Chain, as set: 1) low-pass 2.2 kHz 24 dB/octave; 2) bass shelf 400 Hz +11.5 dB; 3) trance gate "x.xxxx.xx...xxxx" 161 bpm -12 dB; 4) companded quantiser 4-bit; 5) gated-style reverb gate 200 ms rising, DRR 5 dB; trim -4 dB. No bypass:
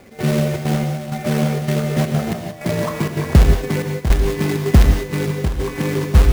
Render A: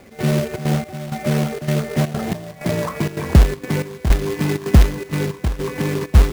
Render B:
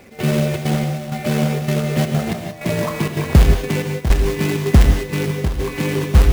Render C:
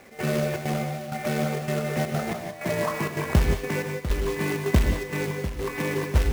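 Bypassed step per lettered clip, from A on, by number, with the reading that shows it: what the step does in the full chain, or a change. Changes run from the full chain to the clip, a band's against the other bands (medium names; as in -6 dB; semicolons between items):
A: 5, loudness change -1.5 LU; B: 1, 4 kHz band +1.5 dB; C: 2, 125 Hz band -4.5 dB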